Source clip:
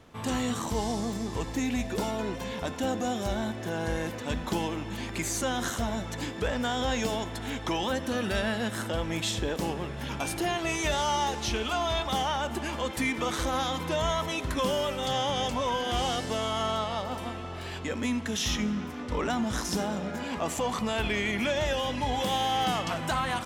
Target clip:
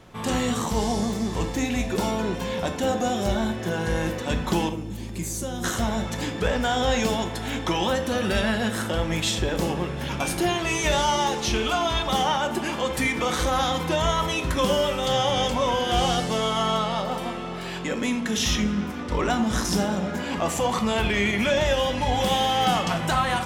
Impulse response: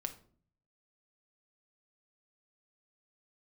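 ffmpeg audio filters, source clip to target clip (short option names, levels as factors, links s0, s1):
-filter_complex "[0:a]asettb=1/sr,asplit=3[s0][s1][s2];[s0]atrim=end=4.694[s3];[s1]atrim=start=4.69:end=5.64,asetpts=PTS-STARTPTS,afade=t=in:d=0.004:c=qsin,afade=t=out:st=0.946:d=0.004:c=qsin,equalizer=f=1600:w=0.31:g=-14.5[s4];[s2]atrim=start=5.636[s5];[s3][s4]acrossfade=d=0.004:c1=hsin:c2=qsin[s6];[s6][s5]acrossfade=d=0.004:c1=qsin:c2=hsin[s7];[1:a]atrim=start_sample=2205[s8];[s7][s8]afir=irnorm=-1:irlink=0,volume=2.11"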